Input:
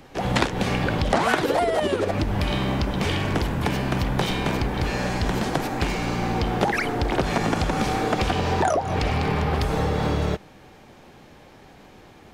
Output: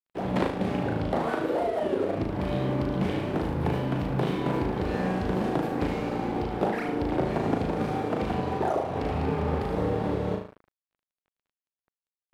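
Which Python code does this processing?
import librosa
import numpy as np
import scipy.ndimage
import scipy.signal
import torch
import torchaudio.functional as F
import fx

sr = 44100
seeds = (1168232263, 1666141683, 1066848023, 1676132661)

y = fx.highpass(x, sr, hz=270.0, slope=6)
y = fx.tilt_shelf(y, sr, db=8.5, hz=910.0)
y = fx.rider(y, sr, range_db=10, speed_s=0.5)
y = fx.room_flutter(y, sr, wall_m=6.4, rt60_s=0.61)
y = np.sign(y) * np.maximum(np.abs(y) - 10.0 ** (-35.0 / 20.0), 0.0)
y = fx.peak_eq(y, sr, hz=6300.0, db=-6.0, octaves=0.87)
y = fx.doppler_dist(y, sr, depth_ms=0.13)
y = y * 10.0 ** (-6.5 / 20.0)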